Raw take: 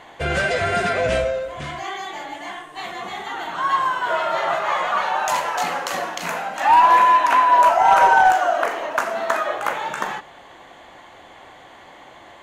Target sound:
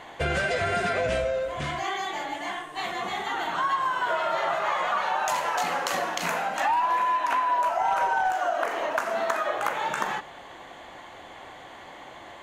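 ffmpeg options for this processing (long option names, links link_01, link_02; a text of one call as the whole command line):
ffmpeg -i in.wav -af "acompressor=threshold=-23dB:ratio=5" out.wav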